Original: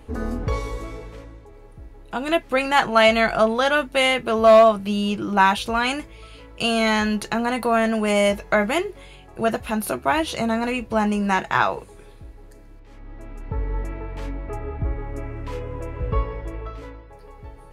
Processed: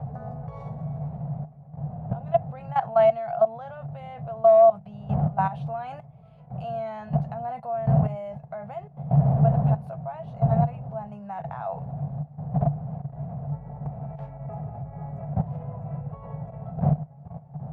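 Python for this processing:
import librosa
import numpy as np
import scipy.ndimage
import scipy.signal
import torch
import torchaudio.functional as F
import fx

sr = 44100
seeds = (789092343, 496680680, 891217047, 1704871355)

y = fx.dmg_wind(x, sr, seeds[0], corner_hz=210.0, level_db=-20.0)
y = fx.level_steps(y, sr, step_db=15)
y = fx.double_bandpass(y, sr, hz=320.0, octaves=2.3)
y = fx.rider(y, sr, range_db=3, speed_s=2.0)
y = y * librosa.db_to_amplitude(5.0)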